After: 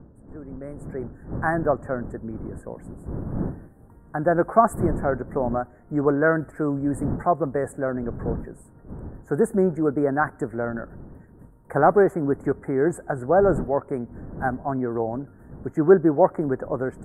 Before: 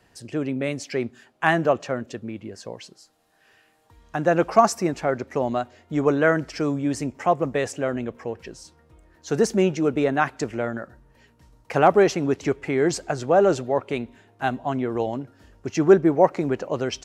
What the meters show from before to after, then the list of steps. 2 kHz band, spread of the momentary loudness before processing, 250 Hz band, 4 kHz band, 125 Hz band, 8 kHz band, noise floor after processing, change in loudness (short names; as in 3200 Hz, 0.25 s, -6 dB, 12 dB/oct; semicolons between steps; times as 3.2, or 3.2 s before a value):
-2.5 dB, 16 LU, 0.0 dB, under -40 dB, +1.5 dB, -11.5 dB, -50 dBFS, -0.5 dB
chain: opening faded in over 1.94 s; wind noise 230 Hz -36 dBFS; elliptic band-stop 1600–8900 Hz, stop band 40 dB